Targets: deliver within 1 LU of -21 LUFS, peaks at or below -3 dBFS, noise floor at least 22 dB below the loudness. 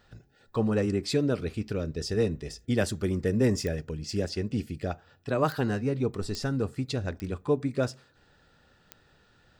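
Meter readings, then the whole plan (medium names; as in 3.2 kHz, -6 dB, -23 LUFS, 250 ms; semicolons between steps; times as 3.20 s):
clicks found 5; loudness -29.5 LUFS; peak level -12.0 dBFS; loudness target -21.0 LUFS
-> de-click; trim +8.5 dB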